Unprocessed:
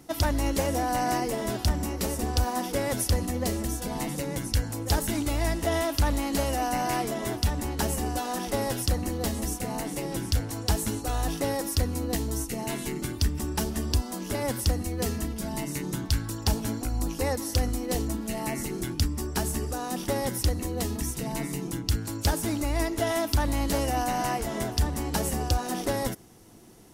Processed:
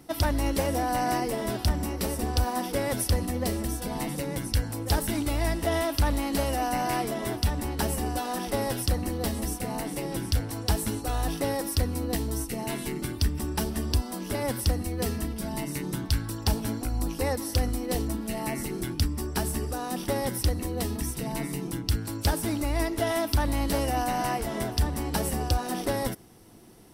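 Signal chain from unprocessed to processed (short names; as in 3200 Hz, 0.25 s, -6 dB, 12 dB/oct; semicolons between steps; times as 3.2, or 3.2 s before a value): bell 6800 Hz -9 dB 0.23 oct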